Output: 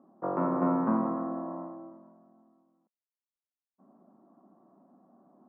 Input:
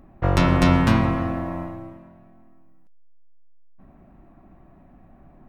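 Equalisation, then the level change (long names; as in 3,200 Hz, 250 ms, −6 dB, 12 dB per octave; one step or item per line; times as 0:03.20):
elliptic band-pass filter 210–1,200 Hz, stop band 50 dB
−6.0 dB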